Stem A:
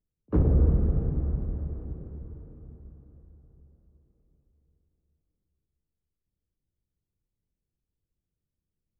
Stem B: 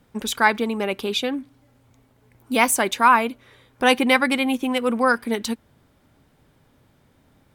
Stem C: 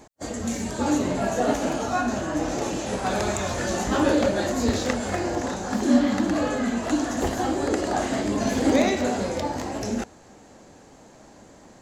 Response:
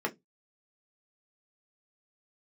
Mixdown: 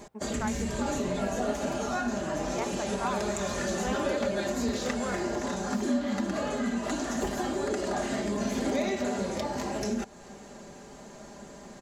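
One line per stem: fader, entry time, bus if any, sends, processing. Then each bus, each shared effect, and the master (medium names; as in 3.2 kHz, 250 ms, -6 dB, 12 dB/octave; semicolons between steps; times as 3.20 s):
-10.5 dB, 0.00 s, no send, peaking EQ 1.5 kHz +14.5 dB 1.4 oct; delay time shaken by noise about 1.9 kHz, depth 0.23 ms
-18.0 dB, 0.00 s, no send, low-pass 5.7 kHz; peaking EQ 640 Hz +9.5 dB 2.5 oct
+1.5 dB, 0.00 s, no send, band-stop 800 Hz, Q 26; comb 5 ms, depth 63%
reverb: none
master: compression 2.5:1, threshold -31 dBFS, peak gain reduction 14 dB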